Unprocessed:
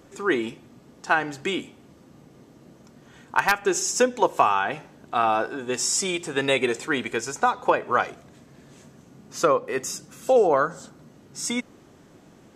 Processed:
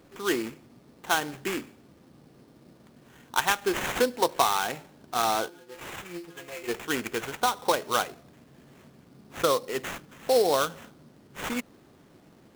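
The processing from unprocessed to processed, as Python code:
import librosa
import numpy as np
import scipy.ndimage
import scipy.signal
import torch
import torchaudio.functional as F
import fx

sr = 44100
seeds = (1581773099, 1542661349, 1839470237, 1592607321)

y = fx.stiff_resonator(x, sr, f0_hz=170.0, decay_s=0.27, stiffness=0.002, at=(5.48, 6.67), fade=0.02)
y = fx.sample_hold(y, sr, seeds[0], rate_hz=4800.0, jitter_pct=20)
y = y * 10.0 ** (-4.0 / 20.0)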